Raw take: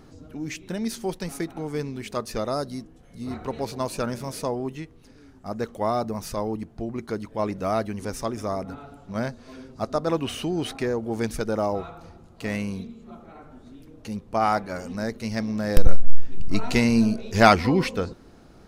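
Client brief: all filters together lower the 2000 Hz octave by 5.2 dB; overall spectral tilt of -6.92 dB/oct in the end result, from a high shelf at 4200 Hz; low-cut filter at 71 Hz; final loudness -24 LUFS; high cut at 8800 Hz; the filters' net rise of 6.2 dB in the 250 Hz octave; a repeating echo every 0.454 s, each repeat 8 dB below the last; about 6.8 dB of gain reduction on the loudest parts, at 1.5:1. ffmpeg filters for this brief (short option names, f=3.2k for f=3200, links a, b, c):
-af "highpass=71,lowpass=8.8k,equalizer=f=250:t=o:g=7.5,equalizer=f=2k:t=o:g=-6.5,highshelf=f=4.2k:g=-4,acompressor=threshold=-28dB:ratio=1.5,aecho=1:1:454|908|1362|1816|2270:0.398|0.159|0.0637|0.0255|0.0102,volume=4dB"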